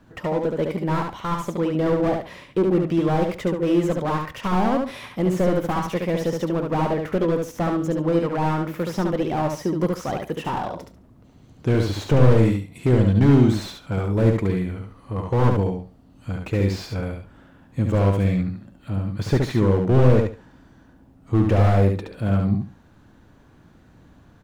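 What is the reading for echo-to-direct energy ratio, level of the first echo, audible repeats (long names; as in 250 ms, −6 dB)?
−4.0 dB, −4.0 dB, 3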